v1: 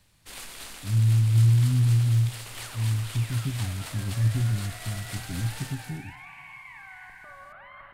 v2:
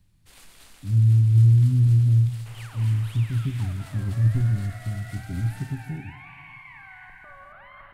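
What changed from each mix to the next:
speech: send +8.0 dB; first sound -10.5 dB; master: add low shelf 70 Hz +7 dB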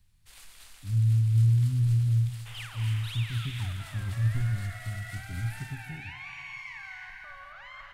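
second sound: remove air absorption 430 m; master: add bell 270 Hz -12 dB 2.6 oct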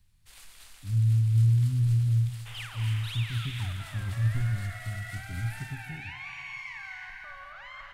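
second sound: send +9.0 dB

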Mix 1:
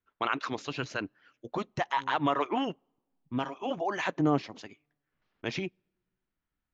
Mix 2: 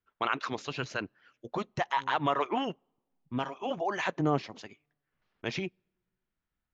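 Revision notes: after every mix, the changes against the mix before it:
master: add bell 290 Hz -5 dB 0.26 oct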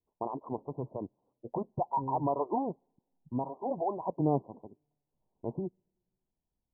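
second voice: remove ladder low-pass 1000 Hz, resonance 80%; master: add steep low-pass 1000 Hz 96 dB/oct

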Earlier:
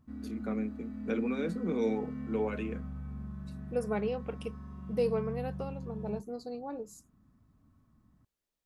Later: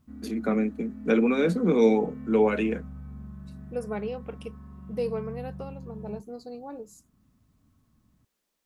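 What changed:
first voice +11.0 dB; background: add air absorption 230 m

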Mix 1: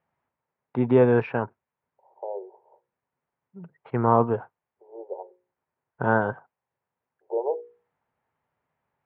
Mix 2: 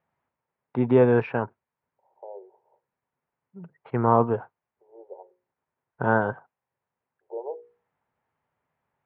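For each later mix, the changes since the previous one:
second voice -7.5 dB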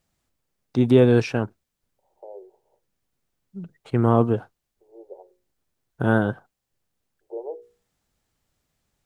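master: remove speaker cabinet 150–2200 Hz, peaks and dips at 200 Hz -7 dB, 310 Hz -9 dB, 940 Hz +8 dB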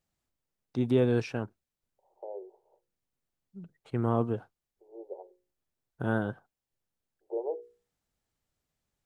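first voice -9.5 dB

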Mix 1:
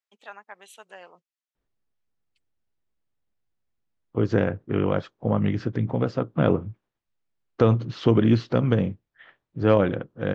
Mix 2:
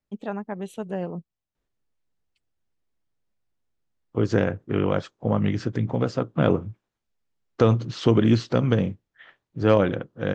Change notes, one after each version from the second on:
first voice: remove HPF 1300 Hz 12 dB/oct; second voice: remove air absorption 140 m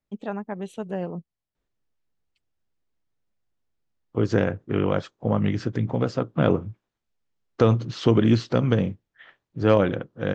master: add LPF 8700 Hz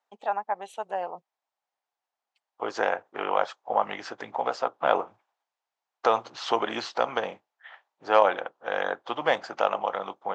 second voice: entry -1.55 s; master: add resonant high-pass 800 Hz, resonance Q 3.4

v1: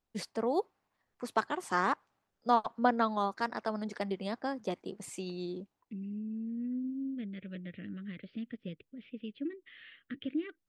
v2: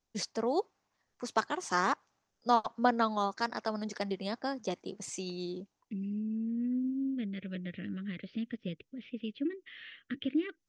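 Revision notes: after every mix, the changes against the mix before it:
second voice +3.5 dB; master: add synth low-pass 6200 Hz, resonance Q 3.7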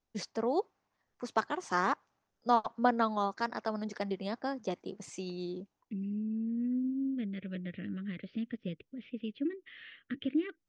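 master: add high shelf 4600 Hz -10.5 dB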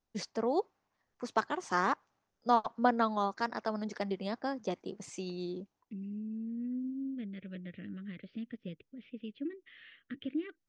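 second voice -4.5 dB

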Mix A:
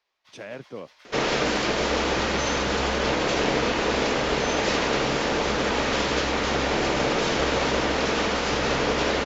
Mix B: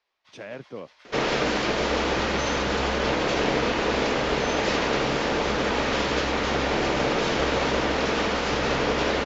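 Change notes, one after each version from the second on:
master: add air absorption 54 m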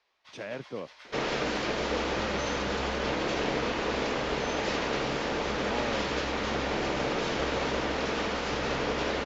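first sound +4.5 dB; second sound -6.0 dB

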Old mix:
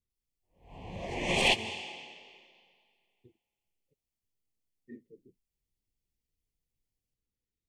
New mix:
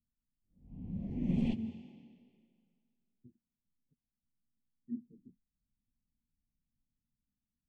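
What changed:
background: add air absorption 69 m; master: add EQ curve 110 Hz 0 dB, 240 Hz +10 dB, 370 Hz -12 dB, 940 Hz -27 dB

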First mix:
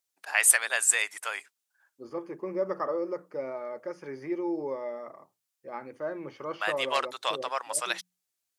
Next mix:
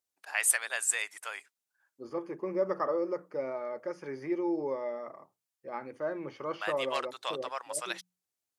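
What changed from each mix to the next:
first voice -6.0 dB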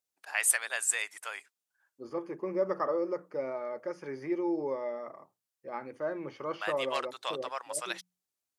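none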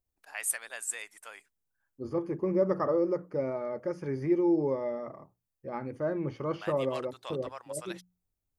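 first voice -7.0 dB; master: remove weighting filter A

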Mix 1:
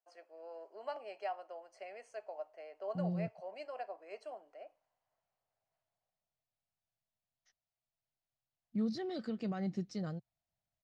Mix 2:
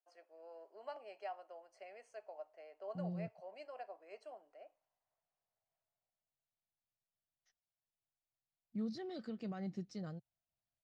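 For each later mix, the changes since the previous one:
first voice -5.5 dB; second voice -5.5 dB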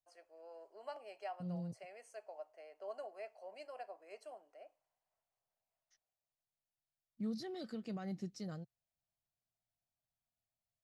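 second voice: entry -1.55 s; master: remove air absorption 91 m

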